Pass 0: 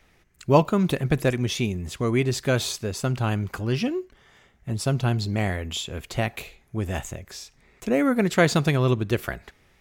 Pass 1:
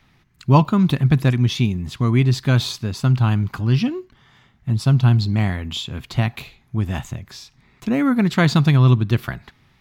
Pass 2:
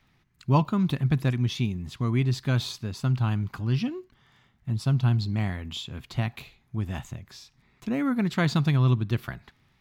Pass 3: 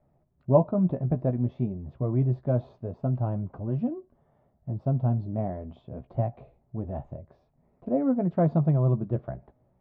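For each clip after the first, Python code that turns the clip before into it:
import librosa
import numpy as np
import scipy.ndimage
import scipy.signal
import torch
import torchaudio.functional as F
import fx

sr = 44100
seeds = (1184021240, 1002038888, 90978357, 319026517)

y1 = fx.graphic_eq(x, sr, hz=(125, 250, 500, 1000, 4000, 8000), db=(11, 6, -7, 7, 7, -5))
y1 = F.gain(torch.from_numpy(y1), -1.5).numpy()
y2 = fx.dmg_crackle(y1, sr, seeds[0], per_s=11.0, level_db=-48.0)
y2 = F.gain(torch.from_numpy(y2), -8.0).numpy()
y3 = fx.chorus_voices(y2, sr, voices=2, hz=0.25, base_ms=14, depth_ms=2.6, mix_pct=30)
y3 = fx.lowpass_res(y3, sr, hz=610.0, q=5.5)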